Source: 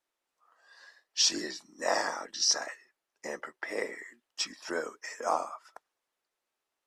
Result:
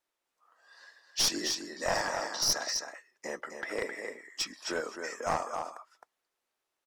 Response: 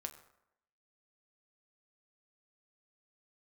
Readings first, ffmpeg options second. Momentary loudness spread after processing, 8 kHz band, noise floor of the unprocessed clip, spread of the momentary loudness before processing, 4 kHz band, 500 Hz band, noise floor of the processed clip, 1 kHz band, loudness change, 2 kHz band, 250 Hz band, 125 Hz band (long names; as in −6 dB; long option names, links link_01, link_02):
14 LU, −0.5 dB, below −85 dBFS, 17 LU, −1.0 dB, 0.0 dB, below −85 dBFS, −0.5 dB, −1.0 dB, +0.5 dB, +1.0 dB, can't be measured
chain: -af "aecho=1:1:263:0.447,aeval=exprs='clip(val(0),-1,0.0447)':channel_layout=same"